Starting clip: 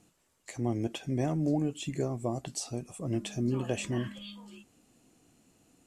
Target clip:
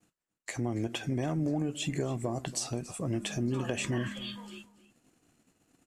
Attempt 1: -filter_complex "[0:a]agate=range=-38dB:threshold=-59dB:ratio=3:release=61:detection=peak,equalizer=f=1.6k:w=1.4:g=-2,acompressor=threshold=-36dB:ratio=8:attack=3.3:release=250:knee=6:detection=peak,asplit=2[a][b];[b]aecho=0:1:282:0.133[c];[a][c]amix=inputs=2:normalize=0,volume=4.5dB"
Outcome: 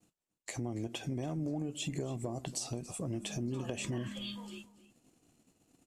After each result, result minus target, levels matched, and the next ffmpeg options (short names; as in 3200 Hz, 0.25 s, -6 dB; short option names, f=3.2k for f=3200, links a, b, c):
compressor: peak gain reduction +5.5 dB; 2000 Hz band -2.5 dB
-filter_complex "[0:a]agate=range=-38dB:threshold=-59dB:ratio=3:release=61:detection=peak,equalizer=f=1.6k:w=1.4:g=-2,acompressor=threshold=-29.5dB:ratio=8:attack=3.3:release=250:knee=6:detection=peak,asplit=2[a][b];[b]aecho=0:1:282:0.133[c];[a][c]amix=inputs=2:normalize=0,volume=4.5dB"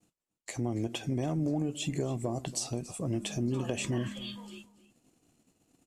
2000 Hz band -4.0 dB
-filter_complex "[0:a]agate=range=-38dB:threshold=-59dB:ratio=3:release=61:detection=peak,equalizer=f=1.6k:w=1.4:g=5.5,acompressor=threshold=-29.5dB:ratio=8:attack=3.3:release=250:knee=6:detection=peak,asplit=2[a][b];[b]aecho=0:1:282:0.133[c];[a][c]amix=inputs=2:normalize=0,volume=4.5dB"